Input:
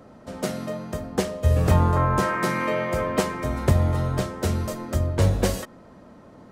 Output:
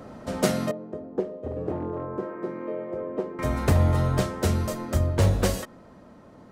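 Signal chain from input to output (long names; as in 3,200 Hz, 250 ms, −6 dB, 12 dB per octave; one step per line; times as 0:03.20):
wave folding −12.5 dBFS
speech leveller 2 s
0:00.71–0:03.39: resonant band-pass 380 Hz, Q 2.2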